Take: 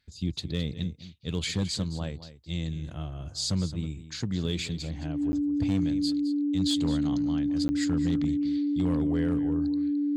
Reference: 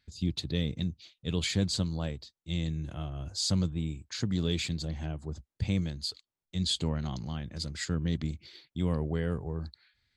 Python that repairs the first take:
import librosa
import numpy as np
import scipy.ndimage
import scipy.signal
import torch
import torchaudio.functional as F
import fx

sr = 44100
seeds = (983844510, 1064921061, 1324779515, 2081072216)

y = fx.fix_declip(x, sr, threshold_db=-19.0)
y = fx.notch(y, sr, hz=290.0, q=30.0)
y = fx.fix_interpolate(y, sr, at_s=(5.32, 7.68), length_ms=10.0)
y = fx.fix_echo_inverse(y, sr, delay_ms=215, level_db=-14.0)